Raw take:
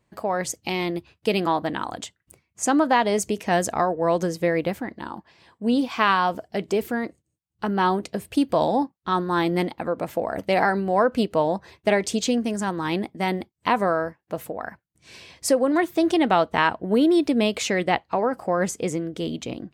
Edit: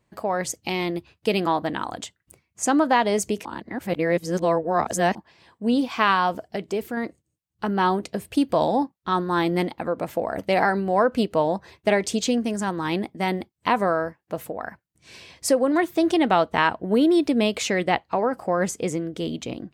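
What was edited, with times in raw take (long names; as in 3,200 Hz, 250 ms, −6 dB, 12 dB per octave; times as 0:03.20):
0:03.45–0:05.15: reverse
0:06.56–0:06.97: clip gain −3.5 dB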